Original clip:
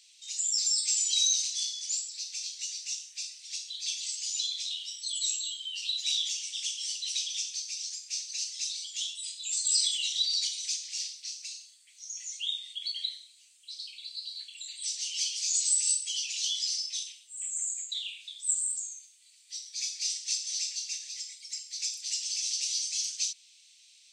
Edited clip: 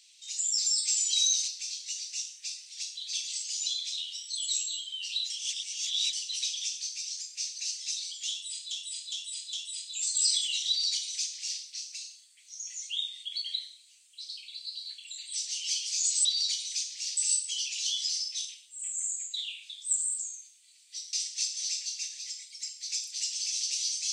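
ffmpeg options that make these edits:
-filter_complex "[0:a]asplit=10[s0][s1][s2][s3][s4][s5][s6][s7][s8][s9];[s0]atrim=end=1.482[s10];[s1]atrim=start=2.208:end=6.032[s11];[s2]atrim=start=6.028:end=6.862,asetpts=PTS-STARTPTS,areverse[s12];[s3]atrim=start=6.858:end=9.442[s13];[s4]atrim=start=9.028:end=9.442[s14];[s5]atrim=start=9.028:end=9.442[s15];[s6]atrim=start=9.028:end=15.752[s16];[s7]atrim=start=10.178:end=11.102[s17];[s8]atrim=start=15.748:end=19.712[s18];[s9]atrim=start=20.028[s19];[s10][s11]acrossfade=d=0.004:c1=hsin:c2=hsin[s20];[s20][s12]acrossfade=d=0.004:c1=hsin:c2=hsin[s21];[s21][s13]acrossfade=d=0.004:c1=hsin:c2=hsin[s22];[s22][s14]acrossfade=d=0.004:c1=hsin:c2=hsin[s23];[s23][s15]acrossfade=d=0.004:c1=hsin:c2=hsin[s24];[s24][s16]acrossfade=d=0.004:c1=hsin:c2=hsin[s25];[s25][s17]acrossfade=d=0.004:c1=hsin:c2=hsin[s26];[s26][s18]acrossfade=d=0.004:c1=hsin:c2=hsin[s27];[s27][s19]acrossfade=d=0.004:c1=hsin:c2=hsin"

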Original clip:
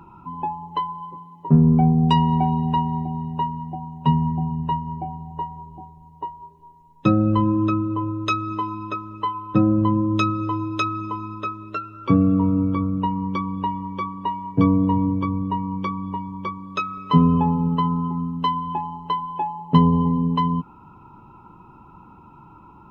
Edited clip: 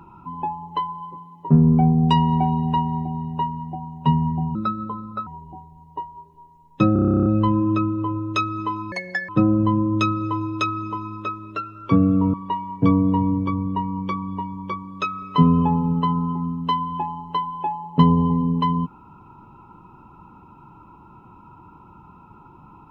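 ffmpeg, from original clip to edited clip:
-filter_complex "[0:a]asplit=17[s0][s1][s2][s3][s4][s5][s6][s7][s8][s9][s10][s11][s12][s13][s14][s15][s16];[s0]atrim=end=4.554[s17];[s1]atrim=start=4.55:end=5.52,asetpts=PTS-STARTPTS,asetrate=59535,aresample=44100[s18];[s2]atrim=start=5.516:end=7.212[s19];[s3]atrim=start=7.178:end=7.212[s20];[s4]atrim=start=7.178:end=7.212[s21];[s5]atrim=start=7.178:end=7.212[s22];[s6]atrim=start=7.178:end=7.212[s23];[s7]atrim=start=7.178:end=7.212[s24];[s8]atrim=start=7.178:end=7.212[s25];[s9]atrim=start=7.178:end=7.212[s26];[s10]atrim=start=7.178:end=7.212[s27];[s11]atrim=start=7.178:end=7.212[s28];[s12]atrim=start=7.178:end=7.212[s29];[s13]atrim=start=7.178:end=8.844[s30];[s14]atrim=start=8.84:end=9.47,asetpts=PTS-STARTPTS,asetrate=75411,aresample=44100,atrim=end_sample=16247,asetpts=PTS-STARTPTS[s31];[s15]atrim=start=9.466:end=12.522[s32];[s16]atrim=start=14.088[s33];[s17][s18]acrossfade=d=0.004:c1=hsin:c2=hsin[s34];[s34][s19]acrossfade=d=0.004:c1=hsin:c2=hsin[s35];[s35][s20]acrossfade=d=0.004:c1=hsin:c2=hsin[s36];[s36][s21]acrossfade=d=0.004:c1=hsin:c2=hsin[s37];[s37][s22]acrossfade=d=0.004:c1=hsin:c2=hsin[s38];[s38][s23]acrossfade=d=0.004:c1=hsin:c2=hsin[s39];[s39][s24]acrossfade=d=0.004:c1=hsin:c2=hsin[s40];[s40][s25]acrossfade=d=0.004:c1=hsin:c2=hsin[s41];[s41][s26]acrossfade=d=0.004:c1=hsin:c2=hsin[s42];[s42][s27]acrossfade=d=0.004:c1=hsin:c2=hsin[s43];[s43][s28]acrossfade=d=0.004:c1=hsin:c2=hsin[s44];[s44][s29]acrossfade=d=0.004:c1=hsin:c2=hsin[s45];[s45][s30]acrossfade=d=0.004:c1=hsin:c2=hsin[s46];[s46][s31]acrossfade=d=0.004:c1=hsin:c2=hsin[s47];[s47][s32]acrossfade=d=0.004:c1=hsin:c2=hsin[s48];[s48][s33]acrossfade=d=0.004:c1=hsin:c2=hsin"

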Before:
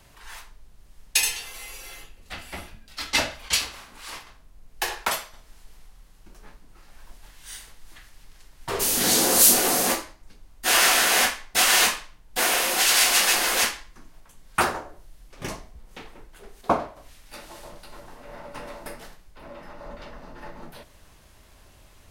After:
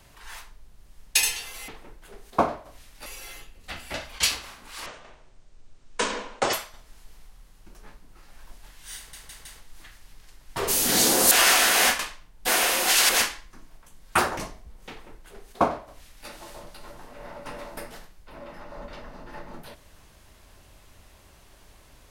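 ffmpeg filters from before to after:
-filter_complex "[0:a]asplit=13[s0][s1][s2][s3][s4][s5][s6][s7][s8][s9][s10][s11][s12];[s0]atrim=end=1.682[s13];[s1]atrim=start=15.988:end=17.372[s14];[s2]atrim=start=1.678:end=2.562[s15];[s3]atrim=start=3.238:end=4.164[s16];[s4]atrim=start=4.16:end=5.13,asetpts=PTS-STARTPTS,asetrate=25578,aresample=44100,atrim=end_sample=73753,asetpts=PTS-STARTPTS[s17];[s5]atrim=start=5.126:end=7.732[s18];[s6]atrim=start=7.568:end=7.732[s19];[s7]atrim=start=7.568:end=7.732[s20];[s8]atrim=start=7.568:end=9.432[s21];[s9]atrim=start=10.668:end=11.352[s22];[s10]atrim=start=11.898:end=13.002[s23];[s11]atrim=start=13.518:end=14.802[s24];[s12]atrim=start=15.458[s25];[s13][s14]acrossfade=d=0.004:c1=hsin:c2=hsin[s26];[s26][s15]acrossfade=d=0.004:c1=hsin:c2=hsin[s27];[s27][s16]acrossfade=d=0.004:c1=hsin:c2=hsin[s28];[s28][s17]acrossfade=d=0.004:c1=hsin:c2=hsin[s29];[s29][s18]acrossfade=d=0.004:c1=hsin:c2=hsin[s30];[s30][s19]acrossfade=d=0.004:c1=hsin:c2=hsin[s31];[s31][s20]acrossfade=d=0.004:c1=hsin:c2=hsin[s32];[s32][s21]acrossfade=d=0.004:c1=hsin:c2=hsin[s33];[s33][s22]acrossfade=d=0.004:c1=hsin:c2=hsin[s34];[s34][s23]acrossfade=d=0.004:c1=hsin:c2=hsin[s35];[s35][s24]acrossfade=d=0.004:c1=hsin:c2=hsin[s36];[s36][s25]acrossfade=d=0.004:c1=hsin:c2=hsin"

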